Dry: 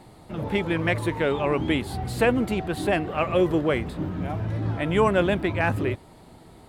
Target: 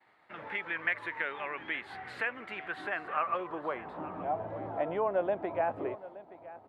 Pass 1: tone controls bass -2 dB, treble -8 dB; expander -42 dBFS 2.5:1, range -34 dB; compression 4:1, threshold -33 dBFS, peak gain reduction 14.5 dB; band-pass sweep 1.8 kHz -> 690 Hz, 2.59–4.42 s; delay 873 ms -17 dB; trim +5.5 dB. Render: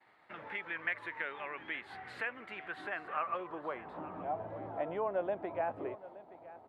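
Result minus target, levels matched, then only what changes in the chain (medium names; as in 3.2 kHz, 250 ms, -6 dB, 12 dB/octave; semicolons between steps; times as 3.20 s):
compression: peak gain reduction +4.5 dB
change: compression 4:1, threshold -27 dBFS, peak gain reduction 10 dB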